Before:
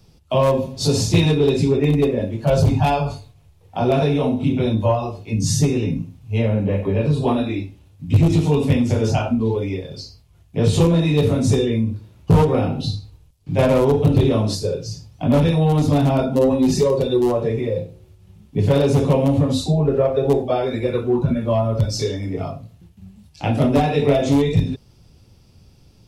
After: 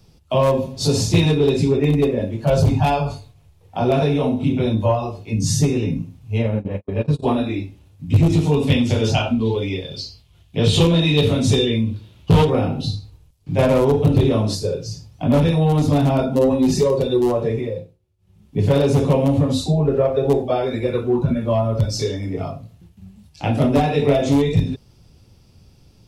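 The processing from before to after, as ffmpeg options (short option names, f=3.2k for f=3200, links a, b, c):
-filter_complex "[0:a]asplit=3[a][b][c];[a]afade=t=out:st=6.37:d=0.02[d];[b]agate=range=-54dB:threshold=-19dB:ratio=16:release=100:detection=peak,afade=t=in:st=6.37:d=0.02,afade=t=out:st=7.22:d=0.02[e];[c]afade=t=in:st=7.22:d=0.02[f];[d][e][f]amix=inputs=3:normalize=0,asettb=1/sr,asplit=3[g][h][i];[g]atrim=end=8.674[j];[h]atrim=start=8.67:end=12.5,asetpts=PTS-STARTPTS,afade=t=in:d=0.004:c=qsin,afade=t=out:st=3.826:d=0.004:c=qsin,equalizer=f=3.3k:w=1.5:g=11[k];[i]atrim=start=12.496[l];[j][k]acrossfade=d=0.004:c1=hsin:c2=qsin[m];[m][l]acrossfade=d=0.004:c1=qsin:c2=hsin,asplit=3[n][o][p];[n]atrim=end=17.98,asetpts=PTS-STARTPTS,afade=t=out:st=17.55:d=0.43:silence=0.0841395[q];[o]atrim=start=17.98:end=18.17,asetpts=PTS-STARTPTS,volume=-21.5dB[r];[p]atrim=start=18.17,asetpts=PTS-STARTPTS,afade=t=in:d=0.43:silence=0.0841395[s];[q][r][s]concat=n=3:v=0:a=1"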